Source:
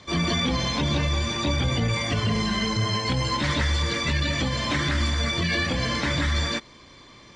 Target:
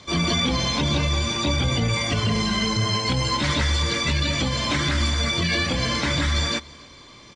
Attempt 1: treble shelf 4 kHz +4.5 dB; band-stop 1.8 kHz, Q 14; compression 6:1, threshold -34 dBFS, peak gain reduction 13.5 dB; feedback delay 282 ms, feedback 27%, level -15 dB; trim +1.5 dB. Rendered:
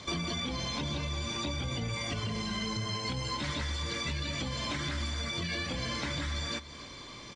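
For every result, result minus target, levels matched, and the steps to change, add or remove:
compression: peak gain reduction +13.5 dB; echo-to-direct +9 dB
remove: compression 6:1, threshold -34 dBFS, peak gain reduction 13.5 dB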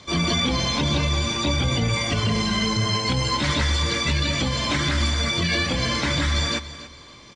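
echo-to-direct +9 dB
change: feedback delay 282 ms, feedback 27%, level -24 dB

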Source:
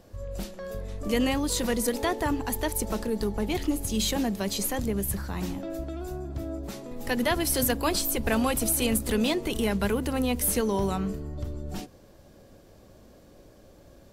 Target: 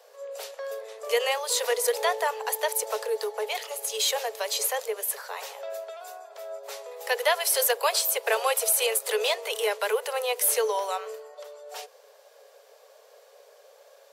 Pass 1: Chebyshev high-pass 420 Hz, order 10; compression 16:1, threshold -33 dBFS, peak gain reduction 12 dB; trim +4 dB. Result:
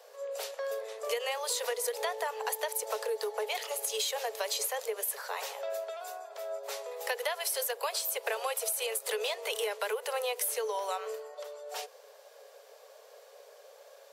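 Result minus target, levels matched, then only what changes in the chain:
compression: peak gain reduction +12 dB
remove: compression 16:1, threshold -33 dBFS, peak gain reduction 12 dB

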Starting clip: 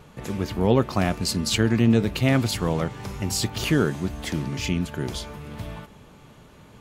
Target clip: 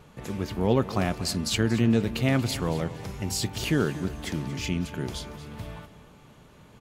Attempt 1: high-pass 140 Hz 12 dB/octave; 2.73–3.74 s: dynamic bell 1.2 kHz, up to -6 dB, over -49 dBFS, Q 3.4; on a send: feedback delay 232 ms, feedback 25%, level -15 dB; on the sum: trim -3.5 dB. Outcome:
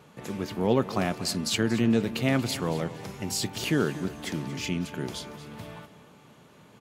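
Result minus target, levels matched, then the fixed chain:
125 Hz band -3.0 dB
2.73–3.74 s: dynamic bell 1.2 kHz, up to -6 dB, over -49 dBFS, Q 3.4; on a send: feedback delay 232 ms, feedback 25%, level -15 dB; on the sum: trim -3.5 dB

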